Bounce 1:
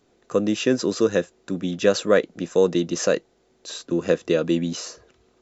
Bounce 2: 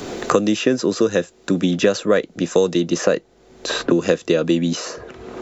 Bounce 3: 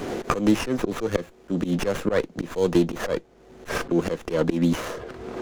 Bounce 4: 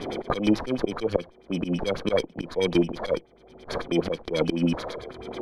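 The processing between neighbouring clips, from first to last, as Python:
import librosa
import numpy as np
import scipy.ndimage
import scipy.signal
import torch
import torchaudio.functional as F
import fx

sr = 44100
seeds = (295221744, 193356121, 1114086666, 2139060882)

y1 = fx.band_squash(x, sr, depth_pct=100)
y1 = y1 * 10.0 ** (3.0 / 20.0)
y2 = fx.auto_swell(y1, sr, attack_ms=120.0)
y2 = fx.running_max(y2, sr, window=9)
y3 = fx.bit_reversed(y2, sr, seeds[0], block=16)
y3 = fx.filter_lfo_lowpass(y3, sr, shape='sine', hz=9.2, low_hz=600.0, high_hz=5500.0, q=2.6)
y3 = y3 * 10.0 ** (-3.0 / 20.0)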